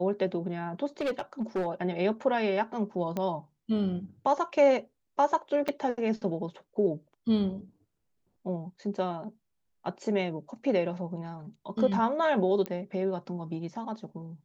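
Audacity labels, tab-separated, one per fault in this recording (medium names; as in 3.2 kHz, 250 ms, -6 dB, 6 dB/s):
1.010000	1.670000	clipped -25.5 dBFS
3.170000	3.170000	pop -19 dBFS
5.680000	5.690000	dropout 5.7 ms
12.660000	12.660000	pop -19 dBFS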